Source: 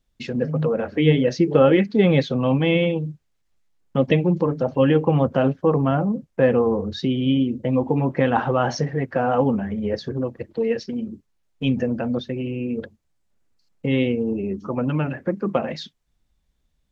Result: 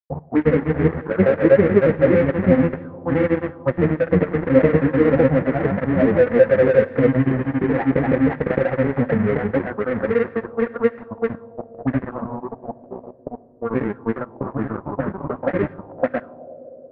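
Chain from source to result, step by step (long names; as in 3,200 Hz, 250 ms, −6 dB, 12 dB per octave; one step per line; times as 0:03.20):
variable-slope delta modulation 16 kbit/s
high-pass filter 130 Hz 12 dB per octave
noise reduction from a noise print of the clip's start 8 dB
low shelf with overshoot 770 Hz +11.5 dB, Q 1.5
pitch-shifted copies added −12 semitones −12 dB
granular cloud 100 ms, grains 25 per second, spray 650 ms
flanger 0.56 Hz, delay 7.8 ms, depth 4.4 ms, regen +50%
dead-zone distortion −27 dBFS
on a send at −15 dB: convolution reverb RT60 4.2 s, pre-delay 5 ms
on the sum: envelope-controlled low-pass 510–1,900 Hz up, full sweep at −17.5 dBFS
level −1.5 dB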